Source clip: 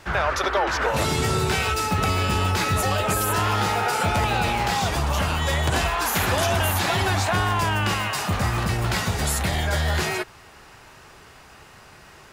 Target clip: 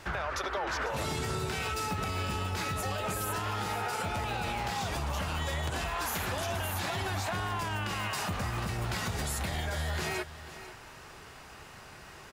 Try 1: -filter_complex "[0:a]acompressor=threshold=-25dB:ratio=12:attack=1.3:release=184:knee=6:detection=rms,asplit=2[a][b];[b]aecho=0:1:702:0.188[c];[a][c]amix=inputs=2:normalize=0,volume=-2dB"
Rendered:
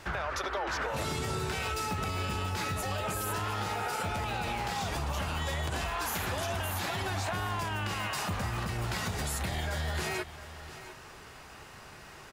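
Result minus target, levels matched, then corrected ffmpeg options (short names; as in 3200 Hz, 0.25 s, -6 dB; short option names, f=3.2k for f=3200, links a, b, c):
echo 0.208 s late
-filter_complex "[0:a]acompressor=threshold=-25dB:ratio=12:attack=1.3:release=184:knee=6:detection=rms,asplit=2[a][b];[b]aecho=0:1:494:0.188[c];[a][c]amix=inputs=2:normalize=0,volume=-2dB"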